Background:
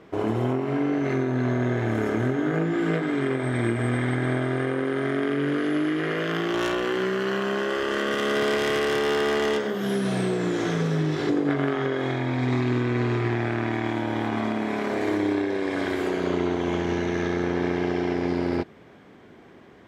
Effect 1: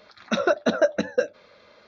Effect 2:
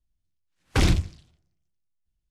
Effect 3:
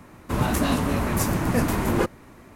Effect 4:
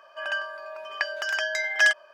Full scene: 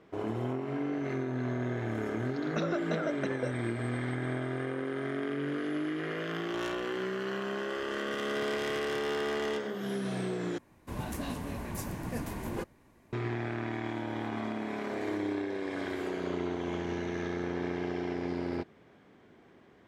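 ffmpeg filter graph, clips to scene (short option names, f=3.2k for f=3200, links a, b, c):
-filter_complex "[0:a]volume=-9dB[a];[1:a]acompressor=threshold=-28dB:ratio=6:attack=3.2:release=140:knee=1:detection=peak[b];[3:a]bandreject=f=1.3k:w=6.5[c];[a]asplit=2[d][e];[d]atrim=end=10.584[f];[c]atrim=end=2.55,asetpts=PTS-STARTPTS,volume=-14dB[g];[e]atrim=start=13.126[h];[b]atrim=end=1.87,asetpts=PTS-STARTPTS,volume=-2.5dB,afade=t=in:d=0.004:c=hsin,afade=t=out:st=1.866:d=0.004:c=hsin,adelay=2250[i];[f][g]acrossfade=d=0.004:c1=hsin:c2=hsin[j];[j][h]acrossfade=d=0.004:c1=hsin:c2=hsin[k];[k][i]amix=inputs=2:normalize=0"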